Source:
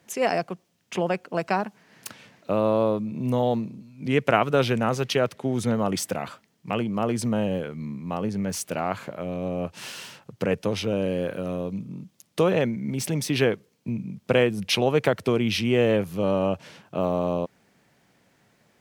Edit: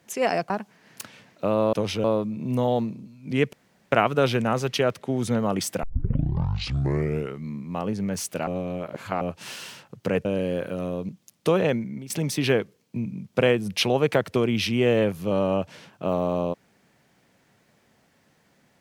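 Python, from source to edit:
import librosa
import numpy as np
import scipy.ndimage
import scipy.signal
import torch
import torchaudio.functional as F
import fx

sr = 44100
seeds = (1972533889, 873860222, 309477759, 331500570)

y = fx.edit(x, sr, fx.cut(start_s=0.5, length_s=1.06),
    fx.insert_room_tone(at_s=4.28, length_s=0.39),
    fx.tape_start(start_s=6.19, length_s=1.62),
    fx.reverse_span(start_s=8.83, length_s=0.74),
    fx.move(start_s=10.61, length_s=0.31, to_s=2.79),
    fx.cut(start_s=11.76, length_s=0.25),
    fx.fade_out_to(start_s=12.72, length_s=0.3, floor_db=-17.5), tone=tone)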